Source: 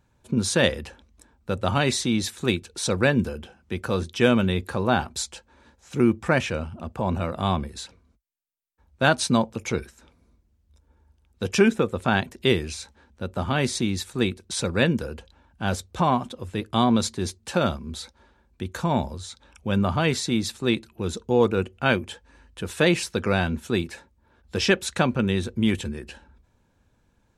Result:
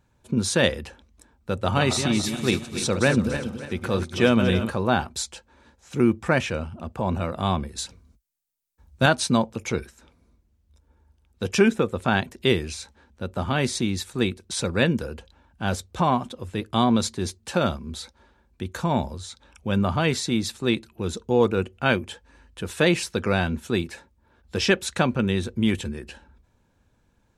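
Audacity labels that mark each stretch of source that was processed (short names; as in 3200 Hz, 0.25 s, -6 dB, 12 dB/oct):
1.510000	4.700000	regenerating reverse delay 0.143 s, feedback 61%, level -7.5 dB
7.780000	9.060000	tone controls bass +7 dB, treble +8 dB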